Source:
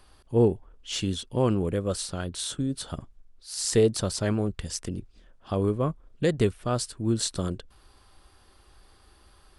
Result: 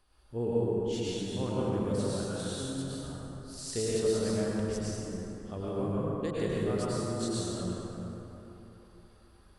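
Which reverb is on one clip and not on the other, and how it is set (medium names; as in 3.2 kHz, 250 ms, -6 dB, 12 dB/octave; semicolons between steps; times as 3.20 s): plate-style reverb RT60 3.5 s, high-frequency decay 0.45×, pre-delay 90 ms, DRR -8 dB; trim -13.5 dB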